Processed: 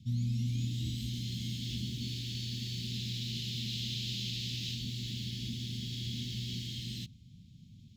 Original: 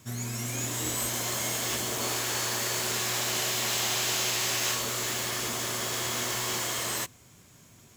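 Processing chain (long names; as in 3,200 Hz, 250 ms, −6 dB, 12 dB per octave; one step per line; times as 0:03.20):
elliptic band-stop filter 210–3,600 Hz, stop band 60 dB
high-frequency loss of the air 340 metres
level +5.5 dB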